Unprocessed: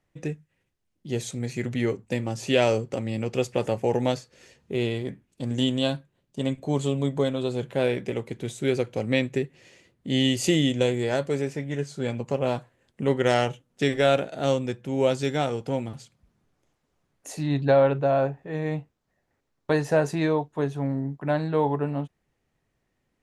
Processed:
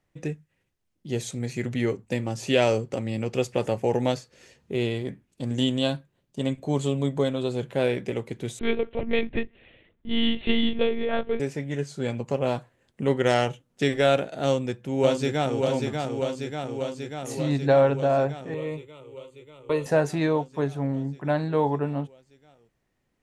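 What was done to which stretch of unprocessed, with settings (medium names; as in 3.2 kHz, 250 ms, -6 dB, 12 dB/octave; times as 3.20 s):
8.59–11.40 s: monotone LPC vocoder at 8 kHz 230 Hz
14.44–15.61 s: echo throw 590 ms, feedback 75%, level -4.5 dB
18.54–19.86 s: static phaser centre 1.1 kHz, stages 8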